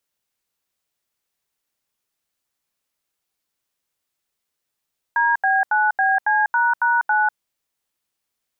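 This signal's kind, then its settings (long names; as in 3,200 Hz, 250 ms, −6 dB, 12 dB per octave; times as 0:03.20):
touch tones "DB9BC##9", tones 196 ms, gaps 80 ms, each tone −17.5 dBFS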